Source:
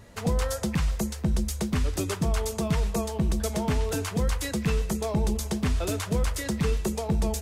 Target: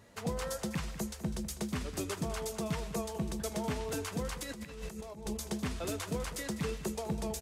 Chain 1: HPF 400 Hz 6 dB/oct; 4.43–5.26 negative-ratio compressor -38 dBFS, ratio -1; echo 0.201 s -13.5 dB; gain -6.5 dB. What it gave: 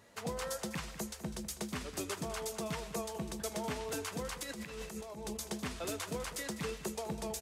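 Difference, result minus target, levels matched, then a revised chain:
125 Hz band -4.0 dB
HPF 150 Hz 6 dB/oct; 4.43–5.26 negative-ratio compressor -38 dBFS, ratio -1; echo 0.201 s -13.5 dB; gain -6.5 dB

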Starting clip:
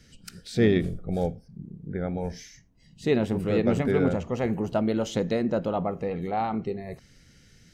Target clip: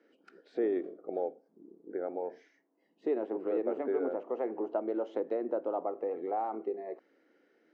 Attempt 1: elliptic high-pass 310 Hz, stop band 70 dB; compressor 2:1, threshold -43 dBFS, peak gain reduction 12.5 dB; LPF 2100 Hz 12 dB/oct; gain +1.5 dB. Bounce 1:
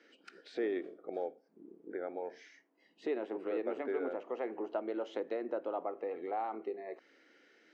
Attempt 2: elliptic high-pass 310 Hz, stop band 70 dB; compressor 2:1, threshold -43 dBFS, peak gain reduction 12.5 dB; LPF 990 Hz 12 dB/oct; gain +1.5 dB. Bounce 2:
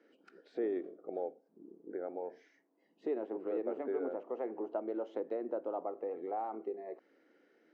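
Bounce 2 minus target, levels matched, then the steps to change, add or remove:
compressor: peak gain reduction +4.5 dB
change: compressor 2:1, threshold -34 dBFS, peak gain reduction 8 dB

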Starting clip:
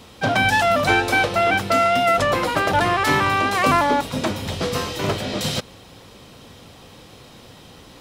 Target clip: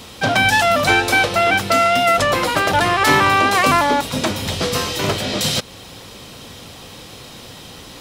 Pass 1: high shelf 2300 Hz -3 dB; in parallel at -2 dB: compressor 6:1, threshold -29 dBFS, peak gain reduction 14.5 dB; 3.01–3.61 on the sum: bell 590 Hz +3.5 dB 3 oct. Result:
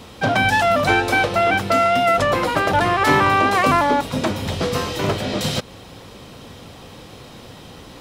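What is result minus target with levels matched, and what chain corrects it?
4000 Hz band -4.0 dB
high shelf 2300 Hz +6 dB; in parallel at -2 dB: compressor 6:1, threshold -29 dBFS, peak gain reduction 16.5 dB; 3.01–3.61 on the sum: bell 590 Hz +3.5 dB 3 oct

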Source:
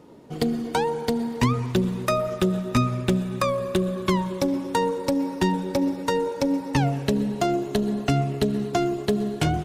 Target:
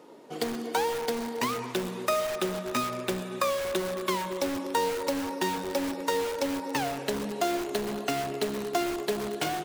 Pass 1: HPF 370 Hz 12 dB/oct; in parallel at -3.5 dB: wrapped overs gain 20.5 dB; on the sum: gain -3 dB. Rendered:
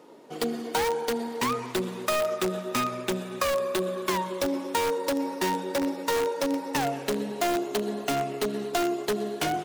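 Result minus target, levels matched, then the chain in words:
wrapped overs: distortion -12 dB
HPF 370 Hz 12 dB/oct; in parallel at -3.5 dB: wrapped overs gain 27.5 dB; on the sum: gain -3 dB

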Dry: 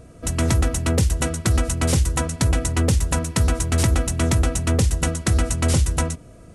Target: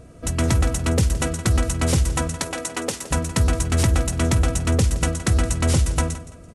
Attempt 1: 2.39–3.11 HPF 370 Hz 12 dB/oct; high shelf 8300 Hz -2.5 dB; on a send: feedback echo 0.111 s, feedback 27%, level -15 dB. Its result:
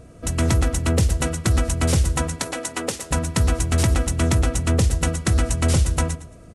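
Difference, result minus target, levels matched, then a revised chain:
echo 57 ms early
2.39–3.11 HPF 370 Hz 12 dB/oct; high shelf 8300 Hz -2.5 dB; on a send: feedback echo 0.168 s, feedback 27%, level -15 dB

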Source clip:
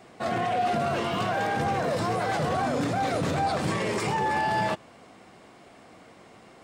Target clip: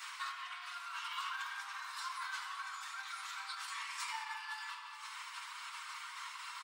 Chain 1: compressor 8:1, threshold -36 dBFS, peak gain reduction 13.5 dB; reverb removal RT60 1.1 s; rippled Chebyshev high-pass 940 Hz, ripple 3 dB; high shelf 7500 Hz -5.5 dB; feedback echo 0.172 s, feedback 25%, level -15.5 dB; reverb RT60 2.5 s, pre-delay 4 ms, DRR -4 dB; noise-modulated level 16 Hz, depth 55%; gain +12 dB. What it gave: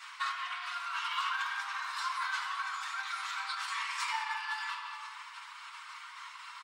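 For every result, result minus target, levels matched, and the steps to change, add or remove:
compressor: peak gain reduction -8 dB; 8000 Hz band -5.0 dB
change: compressor 8:1, threshold -45 dBFS, peak gain reduction 21.5 dB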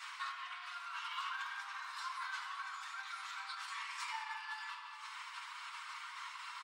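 8000 Hz band -4.5 dB
change: high shelf 7500 Hz +6 dB

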